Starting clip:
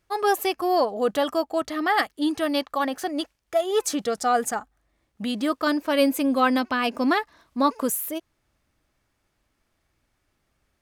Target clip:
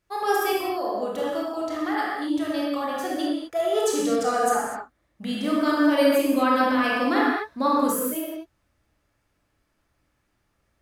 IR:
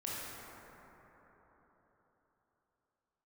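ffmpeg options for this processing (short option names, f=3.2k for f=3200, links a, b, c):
-filter_complex "[0:a]asettb=1/sr,asplit=3[a][b][c];[a]atrim=end=0.534[d];[b]atrim=start=0.53:end=2.89,asetpts=PTS-STARTPTS,afade=t=in:d=0.004:c=qsin,afade=t=out:st=2.356:d=0.004:c=qsin,acompressor=threshold=-26dB:ratio=4[e];[c]atrim=start=2.886[f];[d][e]acrossfade=d=0.004:c1=hsin:c2=qsin[g];[g][f]acrossfade=d=0.004:c1=qsin:c2=hsin[h];[1:a]atrim=start_sample=2205,afade=t=out:st=0.31:d=0.01,atrim=end_sample=14112[i];[h][i]afir=irnorm=-1:irlink=0"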